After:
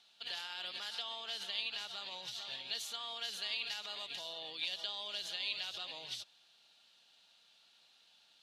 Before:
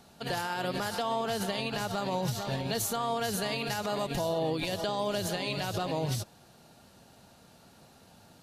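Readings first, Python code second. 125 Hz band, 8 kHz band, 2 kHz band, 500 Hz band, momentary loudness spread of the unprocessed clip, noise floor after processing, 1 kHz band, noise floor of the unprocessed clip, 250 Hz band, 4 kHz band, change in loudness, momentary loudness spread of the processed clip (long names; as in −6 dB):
below −30 dB, −12.0 dB, −7.0 dB, −22.0 dB, 2 LU, −67 dBFS, −17.5 dB, −58 dBFS, −30.0 dB, 0.0 dB, −8.0 dB, 5 LU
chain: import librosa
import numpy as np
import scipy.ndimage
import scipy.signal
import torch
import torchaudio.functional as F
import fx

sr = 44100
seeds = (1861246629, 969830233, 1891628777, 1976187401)

y = fx.bandpass_q(x, sr, hz=3400.0, q=2.9)
y = y * librosa.db_to_amplitude(2.5)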